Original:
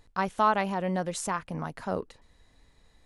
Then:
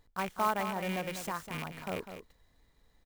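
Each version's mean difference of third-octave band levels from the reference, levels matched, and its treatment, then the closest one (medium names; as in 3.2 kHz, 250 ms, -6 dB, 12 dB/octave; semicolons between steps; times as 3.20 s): 9.5 dB: rattle on loud lows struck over -36 dBFS, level -20 dBFS; band-stop 2.6 kHz, Q 8.9; on a send: delay 200 ms -9.5 dB; on the sum: sampling jitter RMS 0.021 ms; trim -6.5 dB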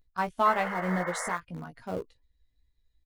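6.5 dB: expander on every frequency bin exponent 1.5; in parallel at -10.5 dB: small samples zeroed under -29 dBFS; on the sum: painted sound noise, 0.45–1.36 s, 450–2200 Hz -34 dBFS; doubling 17 ms -5 dB; trim -3 dB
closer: second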